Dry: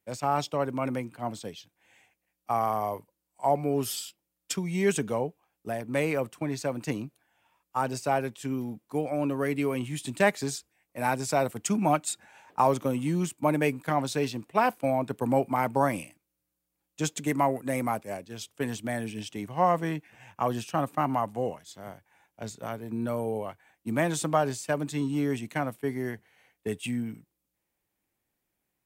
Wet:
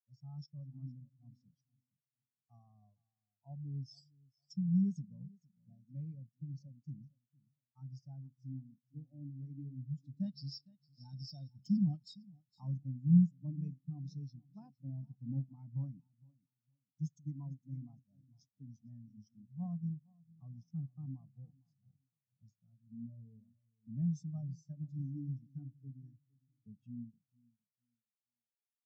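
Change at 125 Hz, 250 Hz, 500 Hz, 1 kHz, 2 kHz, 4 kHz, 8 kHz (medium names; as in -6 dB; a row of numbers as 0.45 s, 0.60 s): -3.5 dB, -8.5 dB, under -40 dB, under -40 dB, under -40 dB, -18.5 dB, under -30 dB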